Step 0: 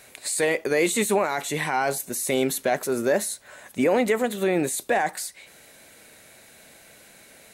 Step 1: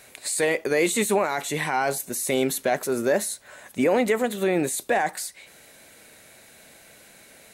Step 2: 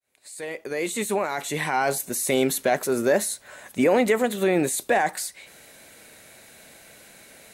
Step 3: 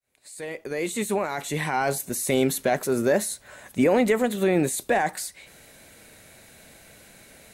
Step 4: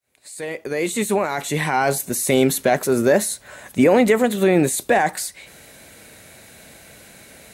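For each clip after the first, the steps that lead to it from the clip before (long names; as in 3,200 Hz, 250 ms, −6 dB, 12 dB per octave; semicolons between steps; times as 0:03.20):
no processing that can be heard
fade in at the beginning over 1.95 s; level +1.5 dB
low-shelf EQ 160 Hz +10.5 dB; level −2 dB
high-pass filter 44 Hz; level +5.5 dB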